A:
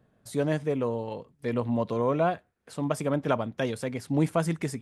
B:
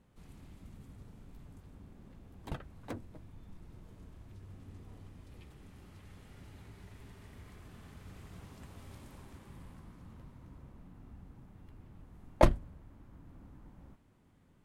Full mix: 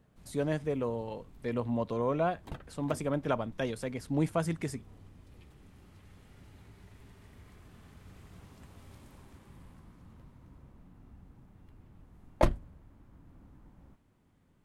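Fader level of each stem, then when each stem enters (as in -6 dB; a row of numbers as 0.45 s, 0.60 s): -4.5 dB, -2.0 dB; 0.00 s, 0.00 s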